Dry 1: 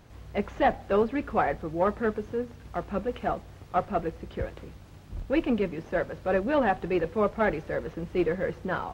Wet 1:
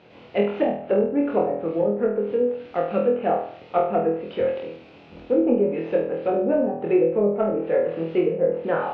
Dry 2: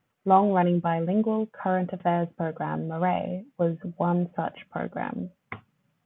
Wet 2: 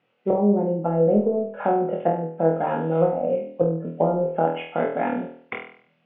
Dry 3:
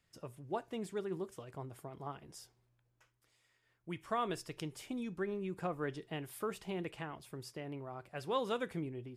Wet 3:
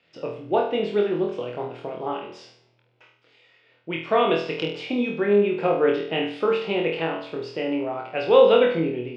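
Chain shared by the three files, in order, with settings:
speaker cabinet 240–4000 Hz, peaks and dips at 500 Hz +6 dB, 1100 Hz -6 dB, 1700 Hz -5 dB, 2600 Hz +6 dB; treble ducked by the level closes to 320 Hz, closed at -20 dBFS; flutter echo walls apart 4.2 m, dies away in 0.54 s; match loudness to -23 LUFS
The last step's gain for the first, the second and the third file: +5.0, +5.0, +14.5 dB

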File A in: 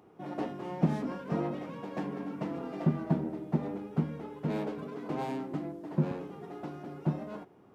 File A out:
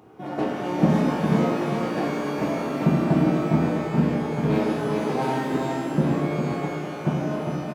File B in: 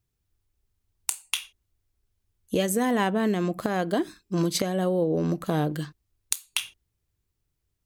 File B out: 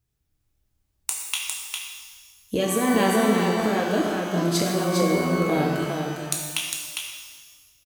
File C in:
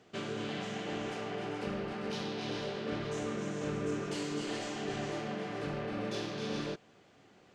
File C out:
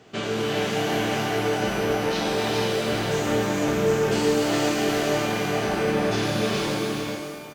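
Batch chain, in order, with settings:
echo 0.404 s -4.5 dB; shimmer reverb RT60 1.4 s, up +12 st, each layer -8 dB, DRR 0 dB; match loudness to -24 LUFS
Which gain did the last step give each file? +7.0, -1.0, +9.0 dB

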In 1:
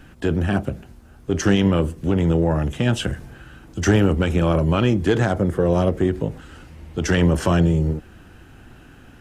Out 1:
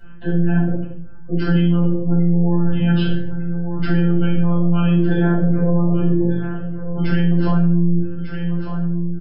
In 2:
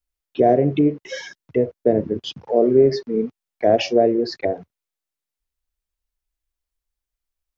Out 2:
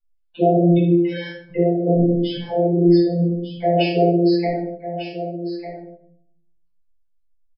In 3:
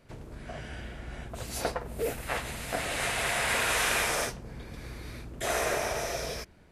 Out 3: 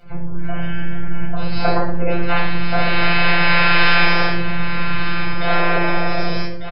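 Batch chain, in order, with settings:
on a send: echo 1.199 s -11 dB; on the sum: dynamic EQ 1200 Hz, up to -4 dB, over -38 dBFS, Q 2.9; downsampling 11025 Hz; robotiser 172 Hz; spectral gate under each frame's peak -25 dB strong; shoebox room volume 1000 m³, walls furnished, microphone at 7.4 m; limiter -1.5 dBFS; match loudness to -19 LUFS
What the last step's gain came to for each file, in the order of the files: -5.5, -4.0, +8.0 dB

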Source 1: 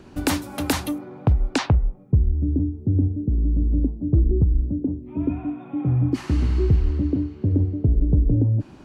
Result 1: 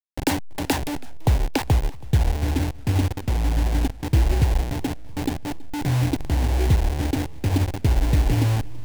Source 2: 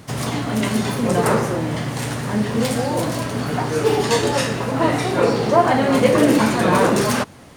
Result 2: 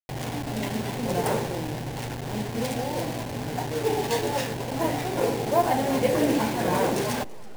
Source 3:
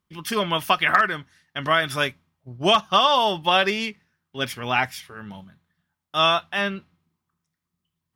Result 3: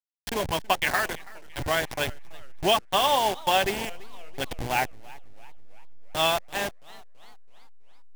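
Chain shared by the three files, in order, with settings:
level-crossing sampler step -20.5 dBFS; thirty-one-band EQ 200 Hz -5 dB, 800 Hz +5 dB, 1250 Hz -10 dB; warbling echo 0.331 s, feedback 52%, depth 164 cents, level -22 dB; normalise peaks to -9 dBFS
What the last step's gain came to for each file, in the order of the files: 0.0, -7.5, -3.5 dB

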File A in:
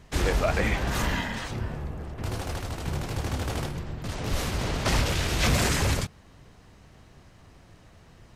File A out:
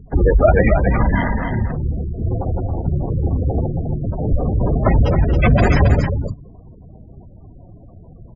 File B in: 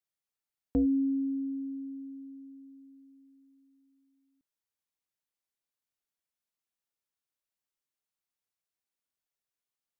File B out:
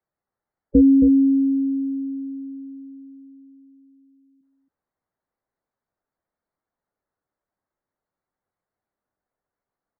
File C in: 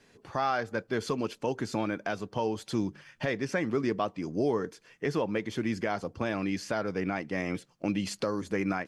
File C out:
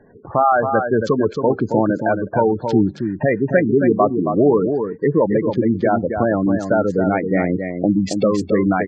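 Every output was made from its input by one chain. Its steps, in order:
Wiener smoothing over 15 samples; spectral gate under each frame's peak -15 dB strong; bell 640 Hz +2.5 dB; on a send: echo 0.273 s -6.5 dB; on the sum: match loudness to -18 LUFS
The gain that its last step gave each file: +12.0, +13.0, +13.5 dB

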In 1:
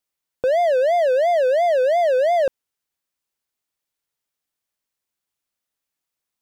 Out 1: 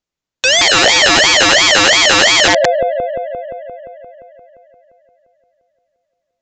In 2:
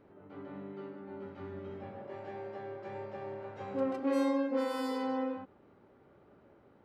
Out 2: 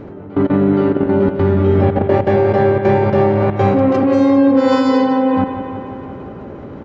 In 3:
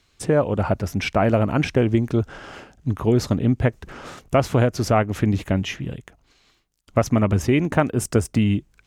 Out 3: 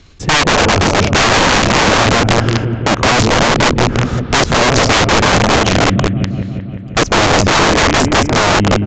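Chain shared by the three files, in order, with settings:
low shelf 420 Hz +10 dB; level quantiser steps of 20 dB; analogue delay 0.174 s, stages 4096, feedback 71%, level -9 dB; wrapped overs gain 22 dB; downsampling 16000 Hz; normalise peaks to -1.5 dBFS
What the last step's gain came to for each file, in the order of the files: +17.5, +27.5, +17.0 dB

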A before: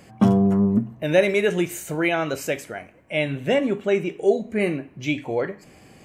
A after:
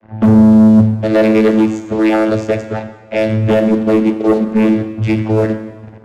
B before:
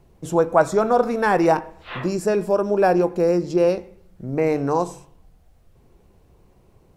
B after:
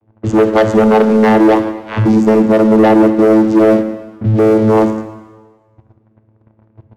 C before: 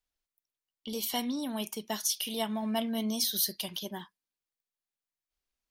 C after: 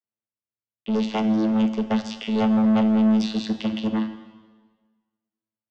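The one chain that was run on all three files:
vocoder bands 16, saw 109 Hz; in parallel at 0 dB: compressor 6:1, threshold -27 dBFS; on the sum: sample leveller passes 3; low-pass opened by the level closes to 2600 Hz, open at -8.5 dBFS; plate-style reverb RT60 1.4 s, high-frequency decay 0.95×, DRR 8.5 dB; gain -1 dB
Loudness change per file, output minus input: +10.0, +10.0, +9.5 LU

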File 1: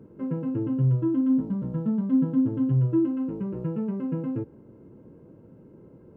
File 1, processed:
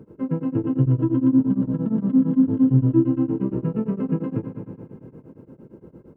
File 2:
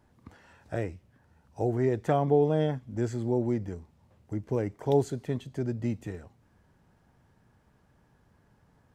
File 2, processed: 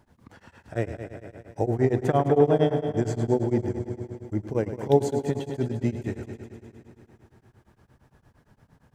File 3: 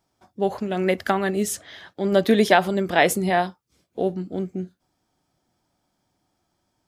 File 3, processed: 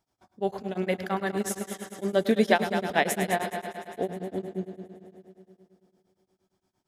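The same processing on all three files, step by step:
on a send: multi-head echo 0.103 s, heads first and second, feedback 68%, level -12 dB; on the sum: beating tremolo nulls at 8.7 Hz; normalise peaks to -6 dBFS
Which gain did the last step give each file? +6.0, +6.0, -4.5 dB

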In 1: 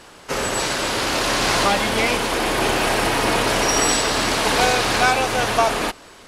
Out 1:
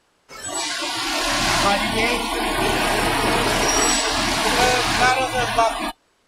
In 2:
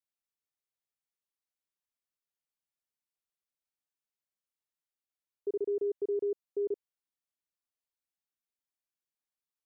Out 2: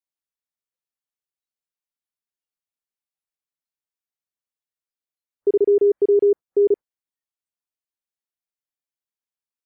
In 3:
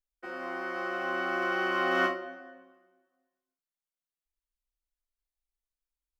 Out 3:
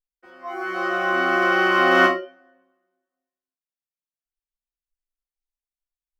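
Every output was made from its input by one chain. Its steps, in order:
spectral noise reduction 19 dB; match loudness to -19 LUFS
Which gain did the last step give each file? +0.5, +15.5, +11.0 dB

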